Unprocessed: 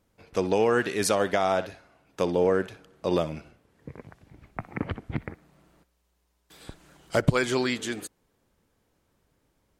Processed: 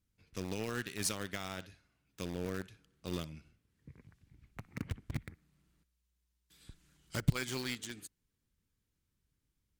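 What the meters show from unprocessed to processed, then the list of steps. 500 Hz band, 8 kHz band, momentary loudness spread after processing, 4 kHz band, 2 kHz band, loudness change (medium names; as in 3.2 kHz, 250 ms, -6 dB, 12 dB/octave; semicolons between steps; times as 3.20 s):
-19.5 dB, -6.0 dB, 20 LU, -7.5 dB, -11.5 dB, -12.5 dB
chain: amplifier tone stack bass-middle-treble 6-0-2; in parallel at -4.5 dB: bit crusher 7-bit; on the sum: trim +4.5 dB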